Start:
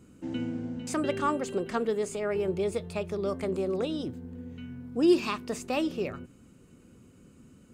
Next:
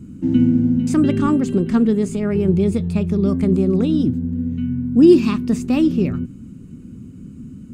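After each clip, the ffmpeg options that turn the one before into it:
-af "lowshelf=f=360:t=q:w=1.5:g=14,volume=1.5"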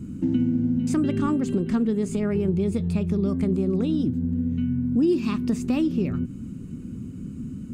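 -af "acompressor=threshold=0.0631:ratio=3,volume=1.19"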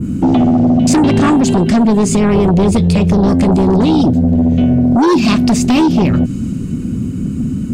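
-af "aeval=exprs='0.266*(cos(1*acos(clip(val(0)/0.266,-1,1)))-cos(1*PI/2))+0.119*(cos(5*acos(clip(val(0)/0.266,-1,1)))-cos(5*PI/2))':c=same,adynamicequalizer=threshold=0.00447:dfrequency=5000:dqfactor=0.75:tfrequency=5000:tqfactor=0.75:attack=5:release=100:ratio=0.375:range=4:mode=boostabove:tftype=bell,volume=2.11"

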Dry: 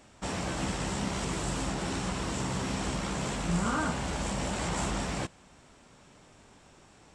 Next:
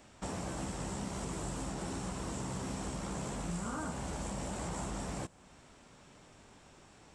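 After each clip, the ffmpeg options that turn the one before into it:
-filter_complex "[0:a]acrossover=split=1300|6800[s0][s1][s2];[s0]acompressor=threshold=0.0178:ratio=4[s3];[s1]acompressor=threshold=0.00224:ratio=4[s4];[s2]acompressor=threshold=0.00501:ratio=4[s5];[s3][s4][s5]amix=inputs=3:normalize=0,volume=0.841"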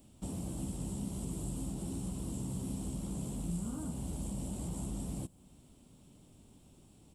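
-af "firequalizer=gain_entry='entry(260,0);entry(450,-9);entry(1700,-23);entry(3000,-8);entry(6000,-12);entry(11000,9)':delay=0.05:min_phase=1,volume=1.26"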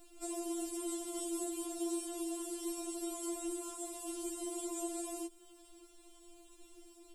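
-af "afftfilt=real='re*4*eq(mod(b,16),0)':imag='im*4*eq(mod(b,16),0)':win_size=2048:overlap=0.75,volume=2.37"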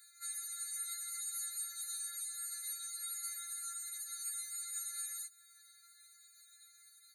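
-af "asuperstop=centerf=1200:order=4:qfactor=3.3,afftfilt=real='re*eq(mod(floor(b*sr/1024/1200),2),1)':imag='im*eq(mod(floor(b*sr/1024/1200),2),1)':win_size=1024:overlap=0.75,volume=2.82"

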